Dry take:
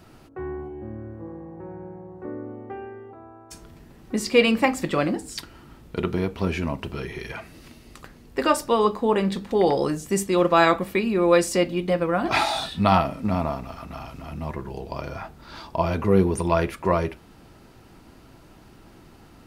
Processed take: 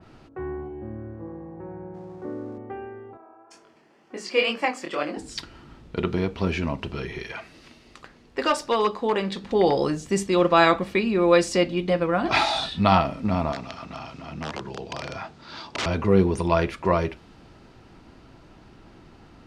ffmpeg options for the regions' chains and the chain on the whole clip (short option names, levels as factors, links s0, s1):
-filter_complex "[0:a]asettb=1/sr,asplit=3[s0][s1][s2];[s0]atrim=end=1.944[s3];[s1]atrim=start=1.94:end=2.58,asetpts=PTS-STARTPTS,afade=t=in:d=0.004:c=qsin,afade=t=out:st=0.636:d=0.004:c=qsin,aeval=exprs='val(0)+0.5*0.00422*sgn(val(0))':c=same,highpass=89,equalizer=f=3200:t=o:w=1.3:g=-7.5[s4];[s2]atrim=start=2.576[s5];[s3][s4]acrossfade=d=0.004:c1=hsin:c2=qsin[s6];[s6][s5]acrossfade=d=0.004:c1=qsin:c2=hsin,asettb=1/sr,asplit=3[s7][s8][s9];[s7]atrim=end=3.174[s10];[s8]atrim=start=3.17:end=5.17,asetpts=PTS-STARTPTS,afade=t=in:d=0.004:c=qsin,afade=t=out:st=1.996:d=0.004:c=qsin,highpass=390,bandreject=f=3800:w=6.2,flanger=delay=20:depth=7.1:speed=2.1[s11];[s9]atrim=start=5.166[s12];[s10][s11]acrossfade=d=0.004:c1=hsin:c2=qsin[s13];[s13][s12]acrossfade=d=0.004:c1=qsin:c2=hsin,asettb=1/sr,asplit=3[s14][s15][s16];[s14]atrim=end=7.234[s17];[s15]atrim=start=7.23:end=9.44,asetpts=PTS-STARTPTS,afade=t=in:d=0.004:c=qsin,afade=t=out:st=2.206:d=0.004:c=qsin,volume=4.73,asoftclip=hard,volume=0.211,lowshelf=f=240:g=-9.5[s18];[s16]atrim=start=9.436[s19];[s17][s18]acrossfade=d=0.004:c1=hsin:c2=qsin[s20];[s20][s19]acrossfade=d=0.004:c1=qsin:c2=hsin,asettb=1/sr,asplit=3[s21][s22][s23];[s21]atrim=end=13.524[s24];[s22]atrim=start=13.52:end=15.86,asetpts=PTS-STARTPTS,afade=t=in:d=0.004:c=qsin,afade=t=out:st=2.336:d=0.004:c=qsin,highshelf=f=4000:g=7.5,aeval=exprs='(mod(11.9*val(0)+1,2)-1)/11.9':c=same,highpass=110,lowpass=7000[s25];[s23]atrim=start=15.856[s26];[s24][s25]acrossfade=d=0.004:c1=hsin:c2=qsin[s27];[s27][s26]acrossfade=d=0.004:c1=qsin:c2=hsin,lowpass=5400,adynamicequalizer=threshold=0.01:dfrequency=2700:dqfactor=0.7:tfrequency=2700:tqfactor=0.7:attack=5:release=100:ratio=0.375:range=2:mode=boostabove:tftype=highshelf"